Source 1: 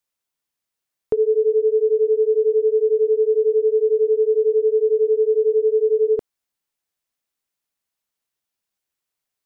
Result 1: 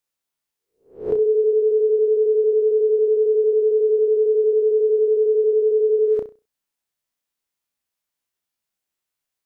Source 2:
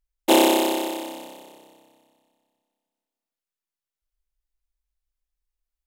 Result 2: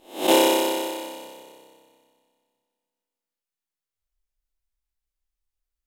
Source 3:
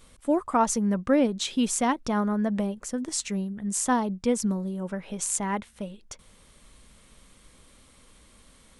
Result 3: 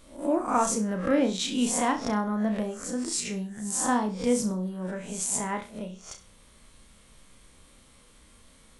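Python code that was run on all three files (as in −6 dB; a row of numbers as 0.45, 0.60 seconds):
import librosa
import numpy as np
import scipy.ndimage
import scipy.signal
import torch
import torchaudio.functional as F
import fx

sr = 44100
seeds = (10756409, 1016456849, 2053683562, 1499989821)

y = fx.spec_swells(x, sr, rise_s=0.41)
y = fx.room_flutter(y, sr, wall_m=5.6, rt60_s=0.29)
y = y * librosa.db_to_amplitude(-3.0)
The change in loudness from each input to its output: 0.0, −1.0, −1.0 LU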